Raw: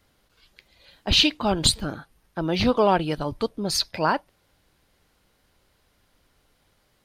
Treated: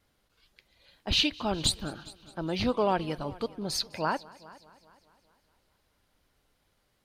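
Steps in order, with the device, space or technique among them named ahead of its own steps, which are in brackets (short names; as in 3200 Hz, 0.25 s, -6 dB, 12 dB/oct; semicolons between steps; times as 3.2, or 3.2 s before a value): multi-head tape echo (multi-head echo 0.206 s, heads first and second, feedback 44%, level -23 dB; wow and flutter 25 cents); gain -7 dB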